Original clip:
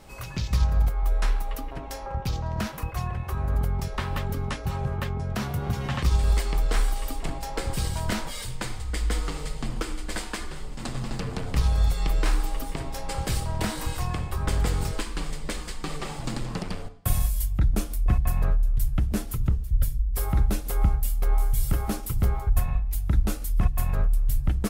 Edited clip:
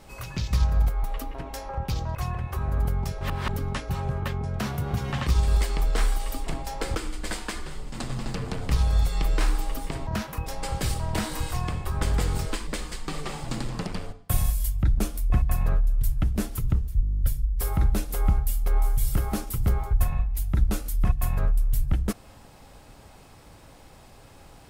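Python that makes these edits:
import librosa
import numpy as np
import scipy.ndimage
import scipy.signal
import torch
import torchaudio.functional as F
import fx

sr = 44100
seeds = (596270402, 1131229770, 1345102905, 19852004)

y = fx.edit(x, sr, fx.cut(start_s=1.04, length_s=0.37),
    fx.move(start_s=2.52, length_s=0.39, to_s=12.92),
    fx.reverse_span(start_s=3.97, length_s=0.28),
    fx.cut(start_s=7.71, length_s=2.09),
    fx.cut(start_s=15.13, length_s=0.3),
    fx.stutter(start_s=19.77, slice_s=0.02, count=11), tone=tone)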